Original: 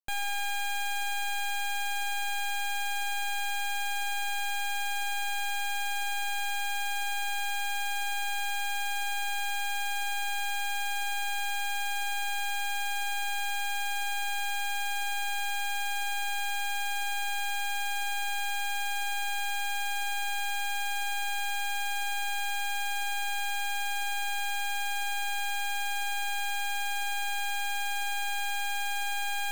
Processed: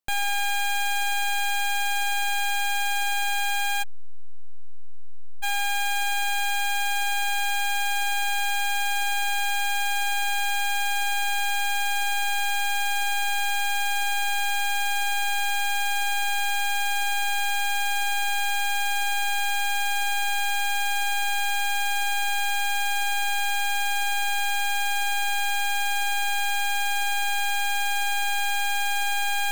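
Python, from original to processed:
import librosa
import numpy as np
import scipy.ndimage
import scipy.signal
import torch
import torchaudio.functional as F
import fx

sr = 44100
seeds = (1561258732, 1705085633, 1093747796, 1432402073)

y = fx.median_filter(x, sr, points=25, at=(3.82, 5.42), fade=0.02)
y = y * 10.0 ** (6.5 / 20.0)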